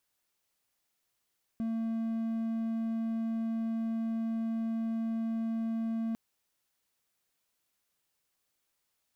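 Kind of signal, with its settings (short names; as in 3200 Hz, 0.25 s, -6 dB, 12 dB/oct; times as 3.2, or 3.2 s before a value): tone triangle 226 Hz -28 dBFS 4.55 s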